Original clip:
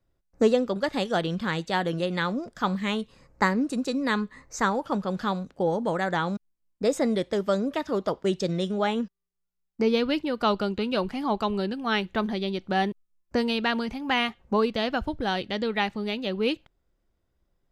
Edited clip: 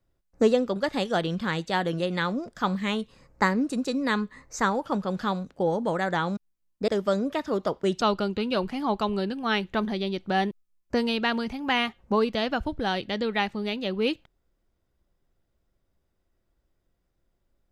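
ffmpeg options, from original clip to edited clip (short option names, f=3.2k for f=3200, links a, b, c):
-filter_complex "[0:a]asplit=3[a][b][c];[a]atrim=end=6.882[d];[b]atrim=start=7.288:end=8.422[e];[c]atrim=start=10.418[f];[d][e]acrossfade=d=0.004:c1=hsin:c2=hsin[g];[g][f]acrossfade=d=0.004:c1=hsin:c2=hsin"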